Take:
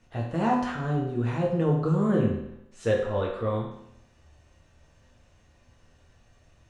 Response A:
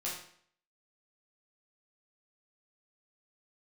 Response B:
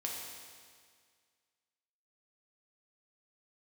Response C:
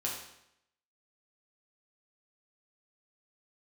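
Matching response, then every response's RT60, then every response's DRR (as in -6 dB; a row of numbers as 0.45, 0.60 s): C; 0.60, 1.9, 0.80 s; -6.5, -2.5, -4.0 dB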